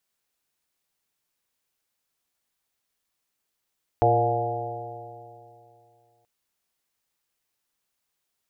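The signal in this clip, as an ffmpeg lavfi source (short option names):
-f lavfi -i "aevalsrc='0.0708*pow(10,-3*t/2.68)*sin(2*PI*115.1*t)+0.00841*pow(10,-3*t/2.68)*sin(2*PI*230.83*t)+0.0447*pow(10,-3*t/2.68)*sin(2*PI*347.78*t)+0.0794*pow(10,-3*t/2.68)*sin(2*PI*466.58*t)+0.0531*pow(10,-3*t/2.68)*sin(2*PI*587.8*t)+0.126*pow(10,-3*t/2.68)*sin(2*PI*712.01*t)+0.0562*pow(10,-3*t/2.68)*sin(2*PI*839.75*t)':d=2.23:s=44100"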